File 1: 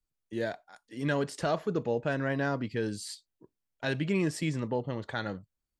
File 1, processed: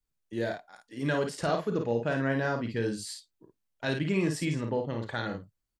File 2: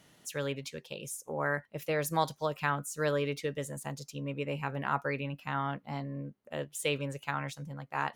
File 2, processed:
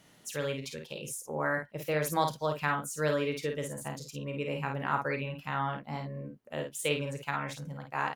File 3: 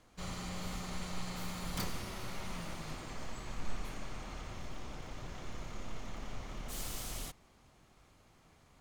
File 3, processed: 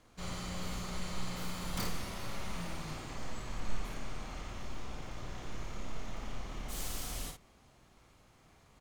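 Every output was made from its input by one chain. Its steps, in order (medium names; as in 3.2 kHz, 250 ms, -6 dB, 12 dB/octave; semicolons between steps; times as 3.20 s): early reflections 34 ms -11 dB, 52 ms -5.5 dB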